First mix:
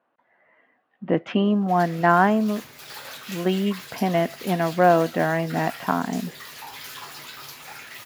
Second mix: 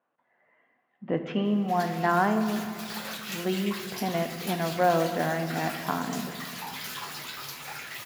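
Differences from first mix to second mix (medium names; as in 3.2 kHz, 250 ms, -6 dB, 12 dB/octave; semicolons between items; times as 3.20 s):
speech -9.5 dB; reverb: on, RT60 2.5 s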